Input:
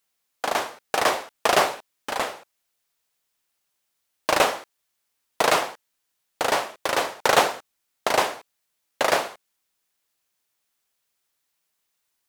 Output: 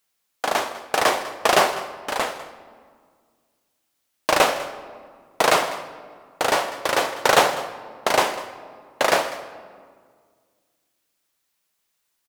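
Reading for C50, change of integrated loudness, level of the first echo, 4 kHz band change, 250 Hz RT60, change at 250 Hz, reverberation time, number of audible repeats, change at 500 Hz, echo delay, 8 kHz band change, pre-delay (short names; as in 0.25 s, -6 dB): 11.5 dB, +2.0 dB, -17.5 dB, +2.5 dB, 2.3 s, +2.5 dB, 1.9 s, 1, +2.5 dB, 0.199 s, +2.0 dB, 3 ms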